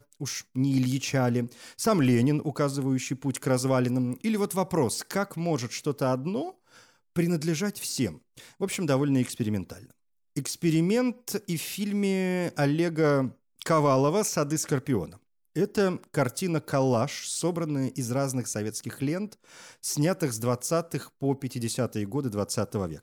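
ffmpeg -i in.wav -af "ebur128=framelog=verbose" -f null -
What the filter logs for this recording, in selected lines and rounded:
Integrated loudness:
  I:         -27.7 LUFS
  Threshold: -38.0 LUFS
Loudness range:
  LRA:         3.8 LU
  Threshold: -48.0 LUFS
  LRA low:   -29.9 LUFS
  LRA high:  -26.1 LUFS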